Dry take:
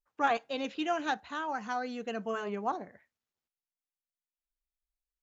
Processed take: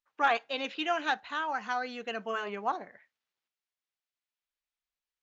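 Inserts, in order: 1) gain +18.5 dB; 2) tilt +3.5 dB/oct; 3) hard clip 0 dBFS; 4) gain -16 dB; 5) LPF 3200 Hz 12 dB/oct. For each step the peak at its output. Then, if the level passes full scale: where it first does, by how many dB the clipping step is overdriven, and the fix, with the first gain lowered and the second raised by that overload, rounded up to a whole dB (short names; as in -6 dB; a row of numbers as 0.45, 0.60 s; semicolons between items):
+3.0, +4.0, 0.0, -16.0, -15.5 dBFS; step 1, 4.0 dB; step 1 +14.5 dB, step 4 -12 dB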